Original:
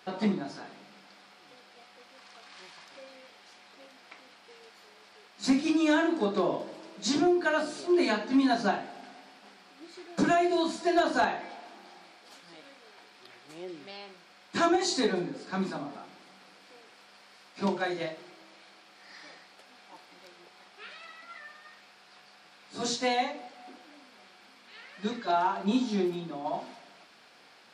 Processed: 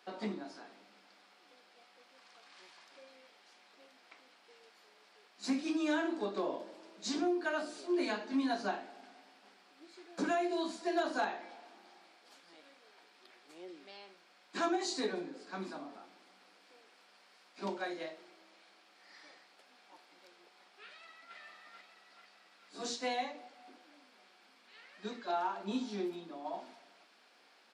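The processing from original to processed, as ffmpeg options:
-filter_complex "[0:a]asplit=2[a][b];[b]afade=t=in:st=20.86:d=0.01,afade=t=out:st=21.37:d=0.01,aecho=0:1:440|880|1320|1760|2200|2640|3080|3520:0.707946|0.38937|0.214154|0.117784|0.0647815|0.0356298|0.0195964|0.010778[c];[a][c]amix=inputs=2:normalize=0,highpass=f=220:w=0.5412,highpass=f=220:w=1.3066,volume=-8dB"

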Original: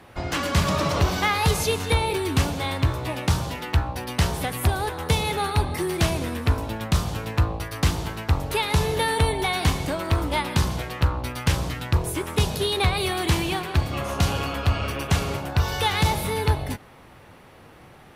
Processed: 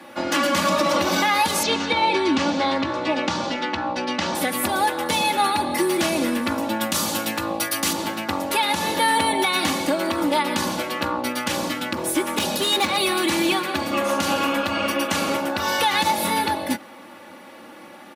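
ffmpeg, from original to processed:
-filter_complex "[0:a]asettb=1/sr,asplit=3[a][b][c];[a]atrim=end=1.634[d];[b]atrim=start=1.63:end=4.35,asetpts=PTS-STARTPTS,afade=t=in:d=0.004:c=qsin,afade=t=out:st=2.716:d=0.004:c=qsin,lowpass=f=6k:w=0.5412,lowpass=f=6k:w=1.3066[e];[c]atrim=start=4.346[f];[d][e]acrossfade=d=0.004:c1=hsin:c2=qsin[g];[g][f]acrossfade=d=0.004:c1=qsin:c2=hsin,asettb=1/sr,asplit=3[h][i][j];[h]atrim=end=6.814[k];[i]atrim=start=6.81:end=7.93,asetpts=PTS-STARTPTS,afade=t=in:d=0.004:c=qsin,afade=t=out:st=1.116:d=0.004:c=qsin,highshelf=f=4.6k:g=11[l];[j]atrim=start=7.926[m];[k][l]acrossfade=d=0.004:c1=hsin:c2=qsin[n];[n][m]acrossfade=d=0.004:c1=qsin:c2=hsin,asplit=3[o][p][q];[o]afade=t=out:st=11.92:d=0.02[r];[p]asoftclip=type=hard:threshold=-21dB,afade=t=in:st=11.92:d=0.02,afade=t=out:st=12.96:d=0.02[s];[q]afade=t=in:st=12.96:d=0.02[t];[r][s][t]amix=inputs=3:normalize=0,highpass=f=160:w=0.5412,highpass=f=160:w=1.3066,aecho=1:1:3.5:0.88,alimiter=limit=-15dB:level=0:latency=1:release=127,volume=4.5dB"

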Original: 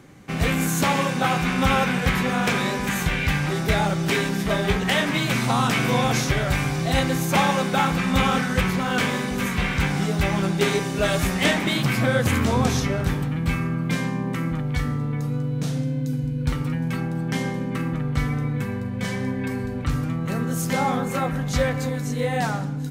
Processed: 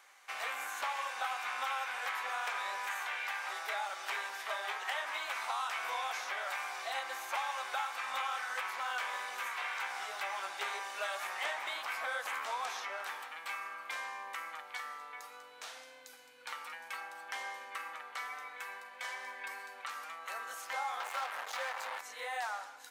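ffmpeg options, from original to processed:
-filter_complex "[0:a]asettb=1/sr,asplit=3[a][b][c];[a]atrim=end=3.004[d];[b]atrim=start=3:end=5.86,asetpts=PTS-STARTPTS,afade=t=in:d=0.004:c=qsin,afade=t=out:st=2.856:d=0.004:c=qsin,equalizer=f=120:w=1.6:g=-14[e];[c]atrim=start=5.856[f];[d][e]acrossfade=d=0.004:c1=hsin:c2=qsin[g];[g][f]acrossfade=d=0.004:c1=qsin:c2=hsin,asettb=1/sr,asplit=3[h][i][j];[h]atrim=end=21.004[k];[i]atrim=start=21:end=22.01,asetpts=PTS-STARTPTS,afade=t=in:d=0.004:c=qsin,afade=t=out:st=1.006:d=0.004:c=qsin,acrusher=bits=3:mix=0:aa=0.5[l];[j]atrim=start=22.006[m];[k][l]acrossfade=d=0.004:c1=hsin:c2=qsin[n];[n][m]acrossfade=d=0.004:c1=qsin:c2=hsin,highpass=f=810:w=0.5412,highpass=f=810:w=1.3066,acrossover=split=1400|3600[o][p][q];[o]acompressor=threshold=-32dB:ratio=4[r];[p]acompressor=threshold=-40dB:ratio=4[s];[q]acompressor=threshold=-48dB:ratio=4[t];[r][s][t]amix=inputs=3:normalize=0,volume=-4.5dB"

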